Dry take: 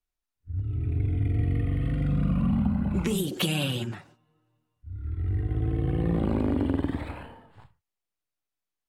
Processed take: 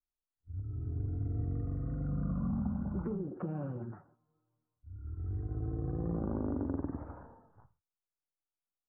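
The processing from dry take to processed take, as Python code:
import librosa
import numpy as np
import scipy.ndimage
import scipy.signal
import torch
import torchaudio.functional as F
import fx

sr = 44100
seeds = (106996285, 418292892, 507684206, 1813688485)

y = scipy.signal.sosfilt(scipy.signal.ellip(4, 1.0, 60, 1400.0, 'lowpass', fs=sr, output='sos'), x)
y = y * 10.0 ** (-8.5 / 20.0)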